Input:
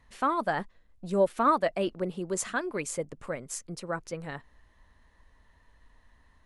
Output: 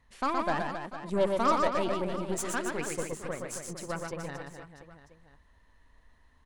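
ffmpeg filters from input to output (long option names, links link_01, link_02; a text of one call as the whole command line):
ffmpeg -i in.wav -af "aeval=exprs='0.224*(cos(1*acos(clip(val(0)/0.224,-1,1)))-cos(1*PI/2))+0.0178*(cos(8*acos(clip(val(0)/0.224,-1,1)))-cos(8*PI/2))':channel_layout=same,aecho=1:1:120|270|457.5|691.9|984.8:0.631|0.398|0.251|0.158|0.1,volume=-3.5dB" out.wav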